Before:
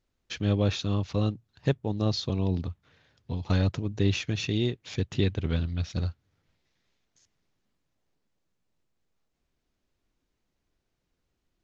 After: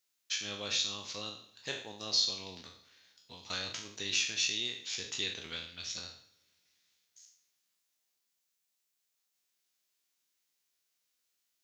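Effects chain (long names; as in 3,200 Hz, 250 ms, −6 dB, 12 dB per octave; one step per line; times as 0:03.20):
peak hold with a decay on every bin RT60 0.52 s
first difference
coupled-rooms reverb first 0.61 s, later 3.3 s, from −21 dB, DRR 13.5 dB
level +7 dB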